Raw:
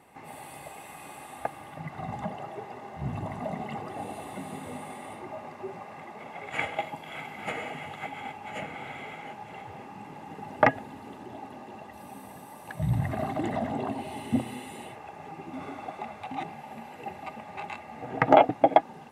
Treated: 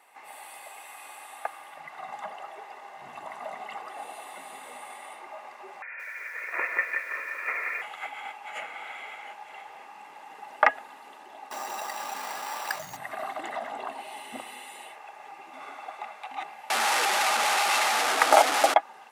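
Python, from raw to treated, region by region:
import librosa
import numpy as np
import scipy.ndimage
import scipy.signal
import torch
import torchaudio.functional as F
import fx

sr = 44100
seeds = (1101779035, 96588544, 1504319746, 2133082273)

y = fx.chain(x, sr, fx.low_shelf(hz=470.0, db=4.5),
    fx.freq_invert(carrier_hz=2600),
    fx.echo_crushed(ms=175, feedback_pct=55, bits=9, wet_db=-5), at=(5.82, 7.82))
y = fx.chain(y, sr, fx.sample_hold(seeds[0], rate_hz=6600.0, jitter_pct=0),
    fx.env_flatten(amount_pct=50), at=(11.51, 12.97))
y = fx.chain(y, sr, fx.delta_mod(bps=64000, step_db=-18.5),
    fx.highpass(hz=120.0, slope=12),
    fx.dynamic_eq(hz=320.0, q=0.92, threshold_db=-29.0, ratio=4.0, max_db=4), at=(16.7, 18.74))
y = fx.dynamic_eq(y, sr, hz=1300.0, q=2.7, threshold_db=-46.0, ratio=4.0, max_db=4)
y = scipy.signal.sosfilt(scipy.signal.butter(2, 840.0, 'highpass', fs=sr, output='sos'), y)
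y = y * librosa.db_to_amplitude(2.0)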